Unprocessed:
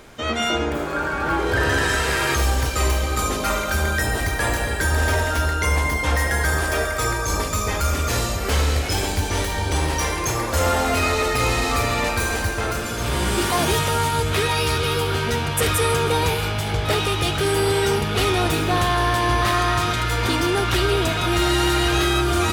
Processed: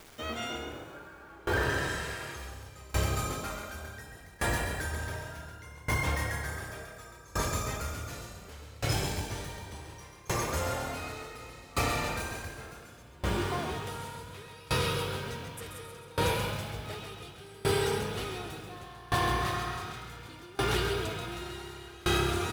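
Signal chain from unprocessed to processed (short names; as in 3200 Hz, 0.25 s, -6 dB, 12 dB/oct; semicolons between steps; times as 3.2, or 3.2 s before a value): 13.02–13.87 LPF 2500 Hz 6 dB/oct; bit-crush 7-bit; frequency-shifting echo 0.134 s, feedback 52%, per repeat +34 Hz, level -4.5 dB; dB-ramp tremolo decaying 0.68 Hz, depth 25 dB; gain -7.5 dB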